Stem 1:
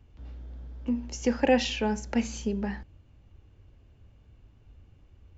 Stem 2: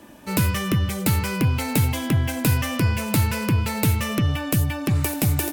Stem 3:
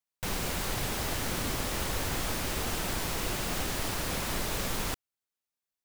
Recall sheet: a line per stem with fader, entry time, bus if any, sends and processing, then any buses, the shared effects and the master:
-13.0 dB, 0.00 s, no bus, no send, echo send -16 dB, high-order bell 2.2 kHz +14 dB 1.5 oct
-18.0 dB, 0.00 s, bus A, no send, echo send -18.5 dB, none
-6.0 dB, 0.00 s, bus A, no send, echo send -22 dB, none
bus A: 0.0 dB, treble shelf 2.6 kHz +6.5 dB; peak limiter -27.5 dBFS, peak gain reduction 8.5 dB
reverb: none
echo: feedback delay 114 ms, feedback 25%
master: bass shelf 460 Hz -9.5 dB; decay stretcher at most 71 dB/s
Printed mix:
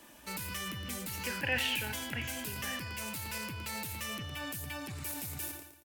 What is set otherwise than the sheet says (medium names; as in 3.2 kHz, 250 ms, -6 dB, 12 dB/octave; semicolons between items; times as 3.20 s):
stem 2 -18.0 dB -> -7.5 dB; stem 3: muted